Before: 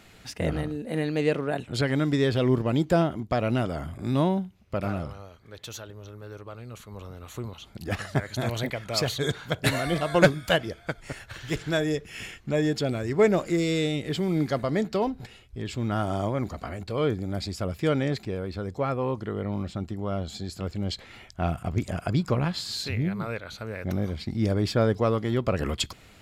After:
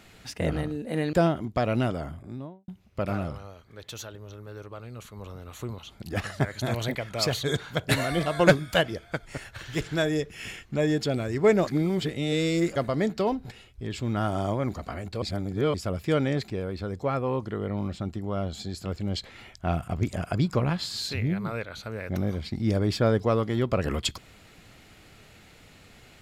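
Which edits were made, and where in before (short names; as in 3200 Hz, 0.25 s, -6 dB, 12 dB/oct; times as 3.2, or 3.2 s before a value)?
1.13–2.88 cut
3.55–4.43 studio fade out
13.42–14.51 reverse
16.97–17.49 reverse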